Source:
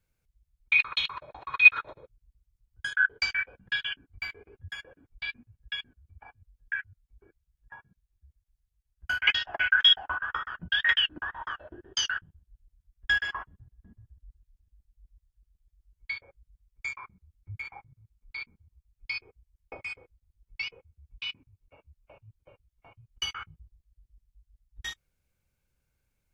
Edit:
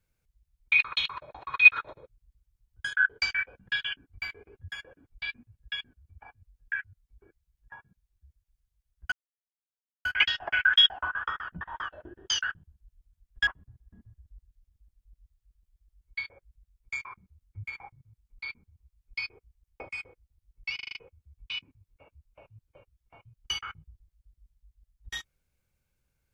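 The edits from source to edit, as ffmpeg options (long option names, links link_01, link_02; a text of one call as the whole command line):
ffmpeg -i in.wav -filter_complex "[0:a]asplit=9[link_01][link_02][link_03][link_04][link_05][link_06][link_07][link_08][link_09];[link_01]atrim=end=9.12,asetpts=PTS-STARTPTS,afade=type=out:start_time=9.116:duration=0.004:curve=hsin,apad=pad_dur=0.93[link_10];[link_02]atrim=start=9.12:end=10.682,asetpts=PTS-STARTPTS,afade=type=in:duration=0.004:curve=hsin[link_11];[link_03]atrim=start=11.278:end=13.142[link_12];[link_04]atrim=start=13.388:end=20.712[link_13];[link_05]atrim=start=20.668:end=20.712[link_14];[link_06]atrim=start=20.668:end=20.712[link_15];[link_07]atrim=start=20.668:end=20.712[link_16];[link_08]atrim=start=20.668:end=20.712[link_17];[link_09]atrim=start=20.668[link_18];[link_10][link_11]concat=n=2:v=0:a=1[link_19];[link_19][link_12]acrossfade=duration=0.004:curve1=hsin:curve2=hsin[link_20];[link_20][link_13]acrossfade=duration=0.004:curve1=hsin:curve2=hsin[link_21];[link_21][link_14]acrossfade=duration=0.004:curve1=hsin:curve2=hsin[link_22];[link_22][link_15]acrossfade=duration=0.004:curve1=hsin:curve2=hsin[link_23];[link_23][link_16]acrossfade=duration=0.004:curve1=hsin:curve2=hsin[link_24];[link_24][link_17]acrossfade=duration=0.004:curve1=hsin:curve2=hsin[link_25];[link_25][link_18]acrossfade=duration=0.004:curve1=hsin:curve2=hsin" out.wav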